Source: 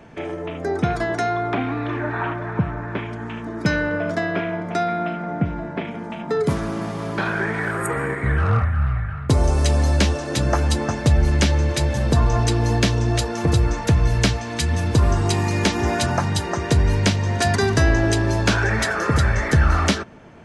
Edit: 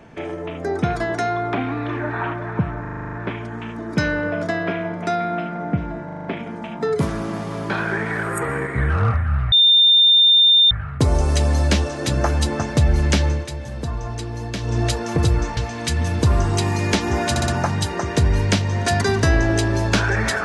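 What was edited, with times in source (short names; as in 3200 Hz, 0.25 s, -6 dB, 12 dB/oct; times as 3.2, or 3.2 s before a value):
2.81 stutter 0.04 s, 9 plays
5.73 stutter 0.04 s, 6 plays
9 add tone 3610 Hz -9.5 dBFS 1.19 s
11.57–13.06 dip -9.5 dB, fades 0.19 s
13.86–14.29 cut
16.02 stutter 0.06 s, 4 plays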